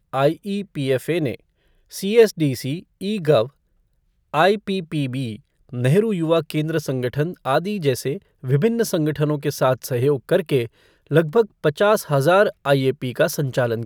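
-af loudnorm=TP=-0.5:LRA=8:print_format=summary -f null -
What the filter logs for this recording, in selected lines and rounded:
Input Integrated:    -20.3 LUFS
Input True Peak:      -2.9 dBTP
Input LRA:             2.5 LU
Input Threshold:     -30.7 LUFS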